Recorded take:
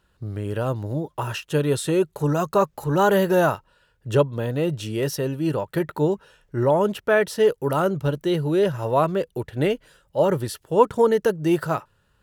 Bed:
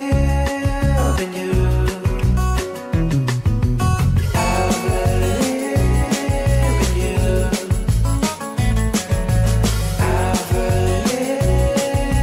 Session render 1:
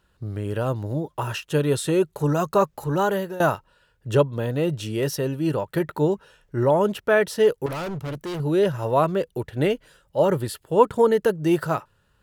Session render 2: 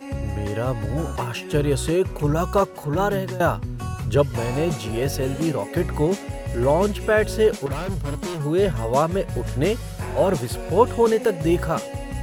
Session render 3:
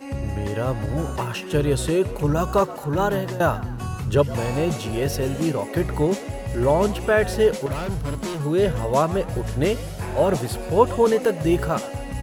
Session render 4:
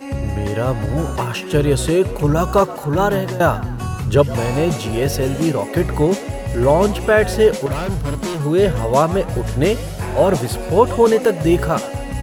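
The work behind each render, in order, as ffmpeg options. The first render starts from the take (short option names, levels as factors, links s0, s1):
-filter_complex "[0:a]asettb=1/sr,asplit=3[s0][s1][s2];[s0]atrim=end=7.664[s3];[s1]atrim=start=7.66:end=8.4,asetpts=PTS-STARTPTS,afade=t=in:d=0.004:c=qsin,afade=t=out:st=0.736:d=0.004:c=qsin,asoftclip=type=hard:threshold=0.0398[s4];[s2]atrim=start=8.396[s5];[s3][s4]acrossfade=d=0.004:c1=hsin:c2=qsin[s6];[s6][s5]acrossfade=d=0.004:c1=qsin:c2=hsin,asettb=1/sr,asplit=3[s7][s8][s9];[s7]atrim=end=10.354[s10];[s8]atrim=start=10.35:end=11.35,asetpts=PTS-STARTPTS,afade=t=in:d=0.004:c=qsin,afade=t=out:st=0.996:d=0.004:c=qsin,equalizer=f=5800:w=7.8:g=-9[s11];[s9]atrim=start=11.346[s12];[s10][s11]acrossfade=d=0.004:c1=hsin:c2=qsin[s13];[s13][s12]acrossfade=d=0.004:c1=qsin:c2=hsin,asplit=2[s14][s15];[s14]atrim=end=3.4,asetpts=PTS-STARTPTS,afade=t=out:st=2.55:d=0.85:c=qsin:silence=0.105925[s16];[s15]atrim=start=3.4,asetpts=PTS-STARTPTS,afade=t=in:d=0.004:c=hsin:silence=0.105925[s17];[s16][s17]concat=n=2:v=0:a=1"
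-filter_complex "[1:a]volume=0.237[s0];[0:a][s0]amix=inputs=2:normalize=0"
-filter_complex "[0:a]asplit=5[s0][s1][s2][s3][s4];[s1]adelay=124,afreqshift=94,volume=0.126[s5];[s2]adelay=248,afreqshift=188,volume=0.0582[s6];[s3]adelay=372,afreqshift=282,volume=0.0266[s7];[s4]adelay=496,afreqshift=376,volume=0.0123[s8];[s0][s5][s6][s7][s8]amix=inputs=5:normalize=0"
-af "volume=1.78,alimiter=limit=0.891:level=0:latency=1"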